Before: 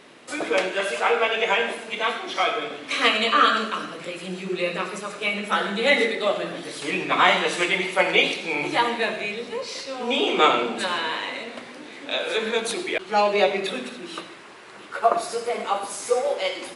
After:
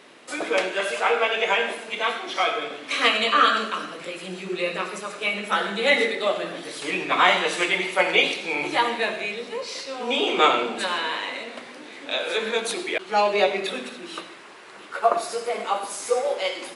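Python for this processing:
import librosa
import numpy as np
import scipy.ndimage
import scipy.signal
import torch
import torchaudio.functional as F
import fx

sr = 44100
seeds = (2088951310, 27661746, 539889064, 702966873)

y = fx.low_shelf(x, sr, hz=130.0, db=-12.0)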